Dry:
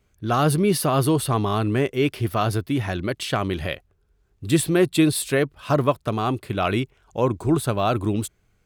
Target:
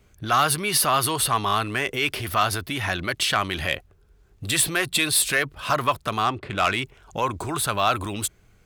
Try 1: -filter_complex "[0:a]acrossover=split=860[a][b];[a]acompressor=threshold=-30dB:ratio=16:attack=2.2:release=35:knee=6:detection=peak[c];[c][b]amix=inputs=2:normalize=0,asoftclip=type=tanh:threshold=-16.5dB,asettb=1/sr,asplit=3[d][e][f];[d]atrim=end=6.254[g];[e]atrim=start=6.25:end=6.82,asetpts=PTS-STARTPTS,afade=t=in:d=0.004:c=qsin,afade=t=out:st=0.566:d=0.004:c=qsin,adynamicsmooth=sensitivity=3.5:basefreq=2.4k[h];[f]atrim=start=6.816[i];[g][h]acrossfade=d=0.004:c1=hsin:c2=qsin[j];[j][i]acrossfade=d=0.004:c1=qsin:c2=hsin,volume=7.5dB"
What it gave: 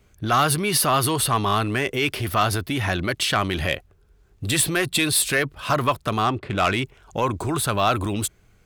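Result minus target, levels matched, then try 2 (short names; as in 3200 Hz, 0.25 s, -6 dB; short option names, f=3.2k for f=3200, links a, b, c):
compressor: peak gain reduction -6 dB
-filter_complex "[0:a]acrossover=split=860[a][b];[a]acompressor=threshold=-36.5dB:ratio=16:attack=2.2:release=35:knee=6:detection=peak[c];[c][b]amix=inputs=2:normalize=0,asoftclip=type=tanh:threshold=-16.5dB,asettb=1/sr,asplit=3[d][e][f];[d]atrim=end=6.254[g];[e]atrim=start=6.25:end=6.82,asetpts=PTS-STARTPTS,afade=t=in:d=0.004:c=qsin,afade=t=out:st=0.566:d=0.004:c=qsin,adynamicsmooth=sensitivity=3.5:basefreq=2.4k[h];[f]atrim=start=6.816[i];[g][h]acrossfade=d=0.004:c1=hsin:c2=qsin[j];[j][i]acrossfade=d=0.004:c1=qsin:c2=hsin,volume=7.5dB"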